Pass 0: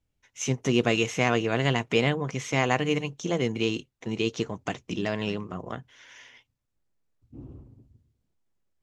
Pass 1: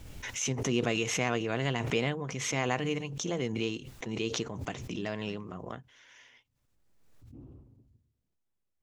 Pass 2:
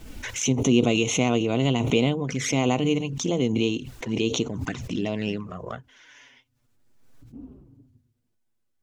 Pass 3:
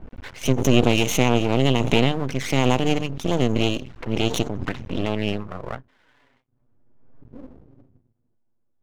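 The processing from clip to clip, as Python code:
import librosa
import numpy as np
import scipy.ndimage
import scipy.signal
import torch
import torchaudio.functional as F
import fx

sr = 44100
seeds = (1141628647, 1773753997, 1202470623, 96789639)

y1 = fx.pre_swell(x, sr, db_per_s=37.0)
y1 = y1 * librosa.db_to_amplitude(-7.0)
y2 = fx.small_body(y1, sr, hz=(260.0, 1500.0), ring_ms=40, db=6)
y2 = fx.env_flanger(y2, sr, rest_ms=8.8, full_db=-29.0)
y2 = y2 * librosa.db_to_amplitude(8.0)
y3 = fx.env_lowpass(y2, sr, base_hz=880.0, full_db=-19.0)
y3 = np.maximum(y3, 0.0)
y3 = y3 * librosa.db_to_amplitude(5.5)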